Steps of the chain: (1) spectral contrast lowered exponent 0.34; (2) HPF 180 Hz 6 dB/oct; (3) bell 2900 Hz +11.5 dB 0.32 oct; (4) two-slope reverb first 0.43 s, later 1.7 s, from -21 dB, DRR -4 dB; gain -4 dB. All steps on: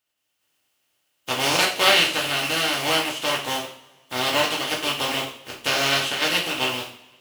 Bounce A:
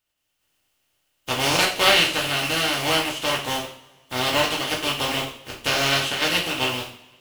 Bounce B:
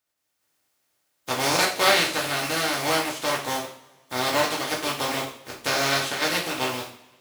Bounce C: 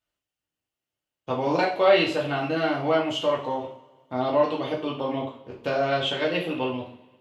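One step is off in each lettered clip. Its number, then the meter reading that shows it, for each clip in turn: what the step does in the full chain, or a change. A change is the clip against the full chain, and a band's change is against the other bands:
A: 2, 125 Hz band +4.0 dB; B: 3, 4 kHz band -5.0 dB; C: 1, 4 kHz band -13.5 dB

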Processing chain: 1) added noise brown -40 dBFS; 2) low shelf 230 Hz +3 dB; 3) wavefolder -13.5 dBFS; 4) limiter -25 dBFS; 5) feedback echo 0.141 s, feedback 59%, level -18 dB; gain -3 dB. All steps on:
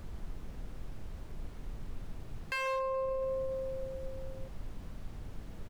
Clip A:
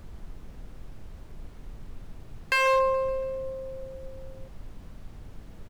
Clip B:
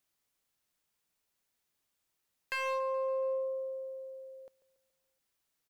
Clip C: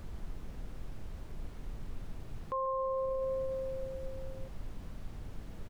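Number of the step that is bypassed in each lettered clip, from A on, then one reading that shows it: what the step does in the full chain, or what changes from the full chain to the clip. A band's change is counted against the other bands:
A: 4, crest factor change +5.5 dB; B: 1, crest factor change +2.5 dB; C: 3, distortion -2 dB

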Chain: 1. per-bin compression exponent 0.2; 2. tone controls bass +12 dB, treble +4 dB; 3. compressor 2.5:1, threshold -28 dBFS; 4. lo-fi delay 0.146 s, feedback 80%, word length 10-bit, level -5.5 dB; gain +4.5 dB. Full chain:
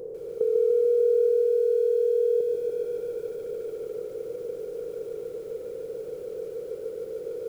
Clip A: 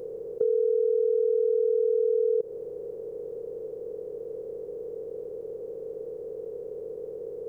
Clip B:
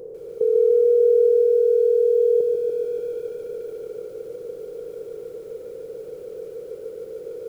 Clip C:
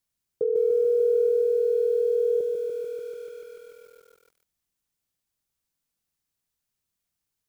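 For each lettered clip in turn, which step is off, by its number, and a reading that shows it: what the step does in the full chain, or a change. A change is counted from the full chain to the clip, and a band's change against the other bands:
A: 4, loudness change -2.0 LU; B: 3, momentary loudness spread change +5 LU; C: 1, momentary loudness spread change +2 LU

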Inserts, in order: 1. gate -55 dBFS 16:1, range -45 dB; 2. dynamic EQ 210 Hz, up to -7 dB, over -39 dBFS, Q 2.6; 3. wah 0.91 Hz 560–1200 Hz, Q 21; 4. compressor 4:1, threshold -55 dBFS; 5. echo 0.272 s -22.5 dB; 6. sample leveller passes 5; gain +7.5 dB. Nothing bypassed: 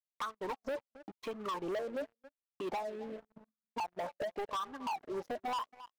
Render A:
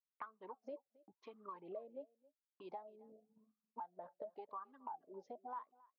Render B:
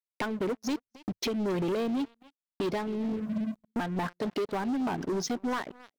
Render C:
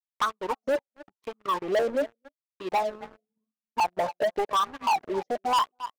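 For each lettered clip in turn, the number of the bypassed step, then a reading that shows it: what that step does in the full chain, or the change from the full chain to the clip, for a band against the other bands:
6, crest factor change +12.0 dB; 3, 125 Hz band +11.0 dB; 4, mean gain reduction 8.0 dB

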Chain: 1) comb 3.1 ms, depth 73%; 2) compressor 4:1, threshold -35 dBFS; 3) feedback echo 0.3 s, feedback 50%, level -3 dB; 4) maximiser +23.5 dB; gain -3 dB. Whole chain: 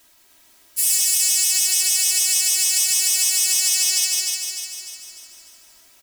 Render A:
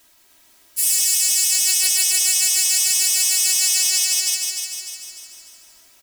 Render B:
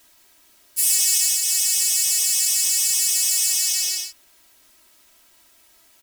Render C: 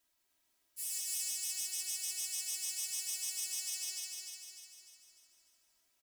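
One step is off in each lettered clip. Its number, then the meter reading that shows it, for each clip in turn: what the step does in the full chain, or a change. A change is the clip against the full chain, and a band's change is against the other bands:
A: 2, mean gain reduction 6.0 dB; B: 3, momentary loudness spread change -8 LU; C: 4, crest factor change +3.5 dB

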